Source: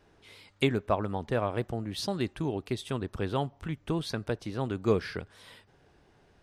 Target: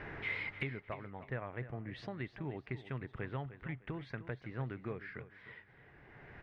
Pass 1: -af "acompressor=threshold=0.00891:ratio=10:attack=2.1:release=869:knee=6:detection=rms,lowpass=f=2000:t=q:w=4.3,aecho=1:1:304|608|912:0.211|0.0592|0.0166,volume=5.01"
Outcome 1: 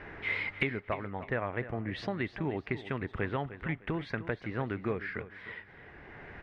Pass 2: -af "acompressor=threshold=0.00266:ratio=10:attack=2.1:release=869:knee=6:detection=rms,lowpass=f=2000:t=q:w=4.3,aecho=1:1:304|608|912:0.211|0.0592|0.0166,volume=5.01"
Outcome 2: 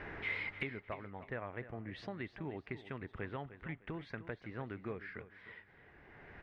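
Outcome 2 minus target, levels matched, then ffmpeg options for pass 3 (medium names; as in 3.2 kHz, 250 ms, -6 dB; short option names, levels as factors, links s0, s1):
125 Hz band -4.0 dB
-af "acompressor=threshold=0.00266:ratio=10:attack=2.1:release=869:knee=6:detection=rms,lowpass=f=2000:t=q:w=4.3,equalizer=f=130:w=4.7:g=9,aecho=1:1:304|608|912:0.211|0.0592|0.0166,volume=5.01"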